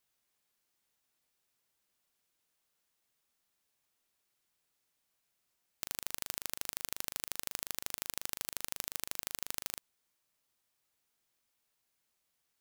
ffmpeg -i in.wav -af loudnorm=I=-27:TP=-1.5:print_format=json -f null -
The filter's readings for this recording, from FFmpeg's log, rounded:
"input_i" : "-39.2",
"input_tp" : "-7.1",
"input_lra" : "15.8",
"input_thresh" : "-49.2",